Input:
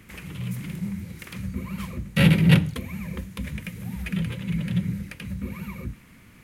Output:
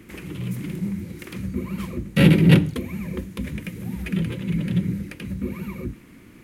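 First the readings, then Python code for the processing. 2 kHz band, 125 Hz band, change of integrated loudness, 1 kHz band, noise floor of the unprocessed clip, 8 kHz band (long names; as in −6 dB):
0.0 dB, +2.0 dB, +2.5 dB, +1.0 dB, −51 dBFS, 0.0 dB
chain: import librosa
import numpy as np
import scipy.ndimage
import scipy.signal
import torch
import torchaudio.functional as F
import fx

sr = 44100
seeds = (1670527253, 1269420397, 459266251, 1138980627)

y = fx.peak_eq(x, sr, hz=330.0, db=12.5, octaves=0.92)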